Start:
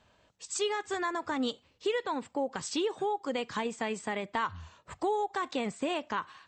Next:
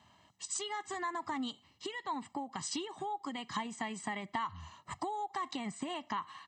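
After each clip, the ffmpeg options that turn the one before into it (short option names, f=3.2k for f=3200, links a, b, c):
-af "acompressor=threshold=-37dB:ratio=4,highpass=110,aecho=1:1:1:0.82"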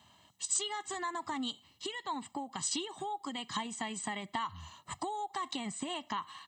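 -af "aexciter=amount=1.7:drive=5.6:freq=3k"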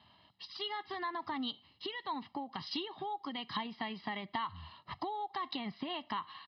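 -af "aresample=11025,aresample=44100,volume=-1dB"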